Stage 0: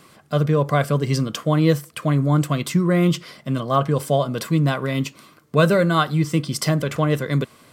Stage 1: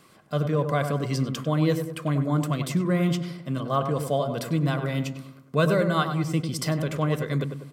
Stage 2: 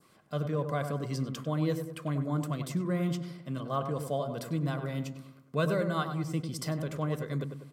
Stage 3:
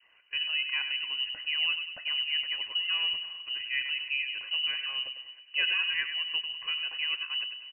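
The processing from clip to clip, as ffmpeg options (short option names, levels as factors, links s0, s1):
-filter_complex "[0:a]asplit=2[s0][s1];[s1]adelay=98,lowpass=f=1500:p=1,volume=0.473,asplit=2[s2][s3];[s3]adelay=98,lowpass=f=1500:p=1,volume=0.52,asplit=2[s4][s5];[s5]adelay=98,lowpass=f=1500:p=1,volume=0.52,asplit=2[s6][s7];[s7]adelay=98,lowpass=f=1500:p=1,volume=0.52,asplit=2[s8][s9];[s9]adelay=98,lowpass=f=1500:p=1,volume=0.52,asplit=2[s10][s11];[s11]adelay=98,lowpass=f=1500:p=1,volume=0.52[s12];[s0][s2][s4][s6][s8][s10][s12]amix=inputs=7:normalize=0,volume=0.501"
-af "adynamicequalizer=threshold=0.00562:dfrequency=2600:dqfactor=1.2:tfrequency=2600:tqfactor=1.2:attack=5:release=100:ratio=0.375:range=2.5:mode=cutabove:tftype=bell,volume=0.447"
-filter_complex "[0:a]asplit=2[s0][s1];[s1]adelay=323,lowpass=f=1600:p=1,volume=0.0891,asplit=2[s2][s3];[s3]adelay=323,lowpass=f=1600:p=1,volume=0.53,asplit=2[s4][s5];[s5]adelay=323,lowpass=f=1600:p=1,volume=0.53,asplit=2[s6][s7];[s7]adelay=323,lowpass=f=1600:p=1,volume=0.53[s8];[s0][s2][s4][s6][s8]amix=inputs=5:normalize=0,lowpass=f=2600:t=q:w=0.5098,lowpass=f=2600:t=q:w=0.6013,lowpass=f=2600:t=q:w=0.9,lowpass=f=2600:t=q:w=2.563,afreqshift=-3100"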